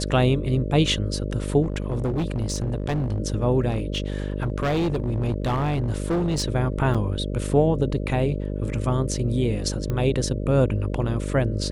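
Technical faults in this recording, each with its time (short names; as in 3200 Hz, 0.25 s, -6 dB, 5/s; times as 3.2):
buzz 50 Hz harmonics 12 -28 dBFS
1.62–3.2 clipped -20.5 dBFS
3.69–6.44 clipped -19.5 dBFS
6.94–6.95 gap 6.2 ms
9.9 pop -16 dBFS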